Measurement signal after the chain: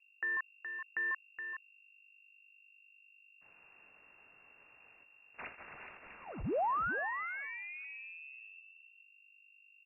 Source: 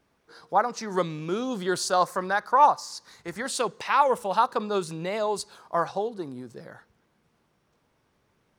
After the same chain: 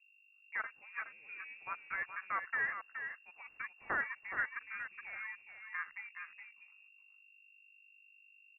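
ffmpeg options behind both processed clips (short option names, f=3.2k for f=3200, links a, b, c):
-filter_complex "[0:a]afwtdn=0.0316,agate=range=-33dB:threshold=-52dB:ratio=3:detection=peak,aderivative,acrossover=split=1100[a][b];[a]acompressor=threshold=-50dB:ratio=6[c];[b]acrusher=bits=5:mode=log:mix=0:aa=0.000001[d];[c][d]amix=inputs=2:normalize=0,aeval=exprs='val(0)+0.000282*(sin(2*PI*50*n/s)+sin(2*PI*2*50*n/s)/2+sin(2*PI*3*50*n/s)/3+sin(2*PI*4*50*n/s)/4+sin(2*PI*5*50*n/s)/5)':c=same,asplit=2[e][f];[f]acrusher=bits=2:mix=0:aa=0.5,volume=-5.5dB[g];[e][g]amix=inputs=2:normalize=0,asplit=2[h][i];[i]adelay=419.8,volume=-7dB,highshelf=f=4k:g=-9.45[j];[h][j]amix=inputs=2:normalize=0,lowpass=f=2.4k:t=q:w=0.5098,lowpass=f=2.4k:t=q:w=0.6013,lowpass=f=2.4k:t=q:w=0.9,lowpass=f=2.4k:t=q:w=2.563,afreqshift=-2800,volume=5.5dB"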